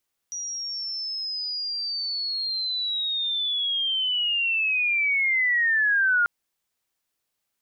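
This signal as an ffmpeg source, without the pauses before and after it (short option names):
-f lavfi -i "aevalsrc='pow(10,(-29.5+12*t/5.94)/20)*sin(2*PI*(5800*t-4400*t*t/(2*5.94)))':d=5.94:s=44100"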